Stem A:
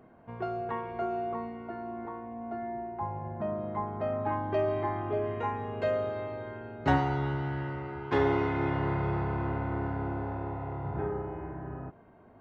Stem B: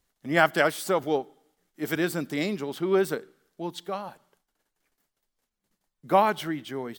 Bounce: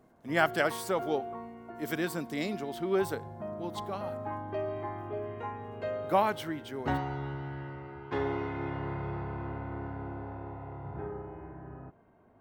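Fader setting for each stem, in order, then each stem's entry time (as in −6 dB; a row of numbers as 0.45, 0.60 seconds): −6.0, −5.5 decibels; 0.00, 0.00 seconds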